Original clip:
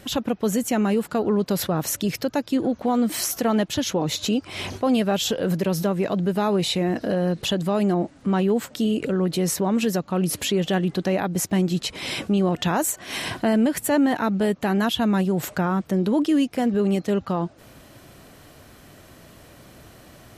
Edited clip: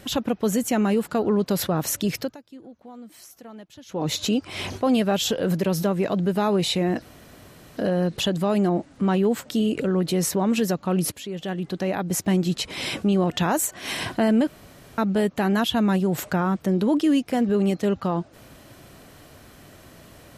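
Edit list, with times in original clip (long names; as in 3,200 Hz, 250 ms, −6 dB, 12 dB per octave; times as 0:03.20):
0:02.19–0:04.06: duck −21 dB, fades 0.18 s
0:07.02: splice in room tone 0.75 s
0:10.37–0:11.51: fade in, from −15.5 dB
0:13.72–0:14.23: fill with room tone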